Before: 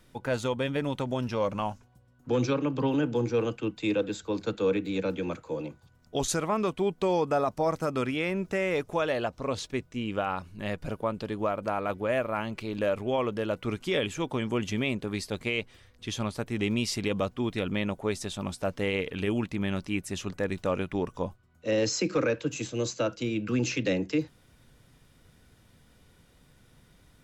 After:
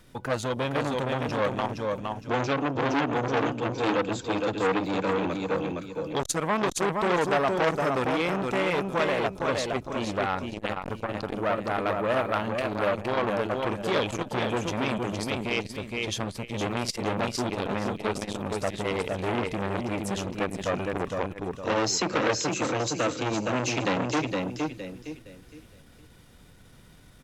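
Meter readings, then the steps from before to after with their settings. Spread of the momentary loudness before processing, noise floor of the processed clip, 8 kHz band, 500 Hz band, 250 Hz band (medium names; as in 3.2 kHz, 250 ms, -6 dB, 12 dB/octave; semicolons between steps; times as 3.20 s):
7 LU, -52 dBFS, +3.5 dB, +1.5 dB, +0.5 dB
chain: on a send: feedback delay 464 ms, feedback 29%, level -4.5 dB; on the sum: transformer saturation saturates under 1.7 kHz; trim +5 dB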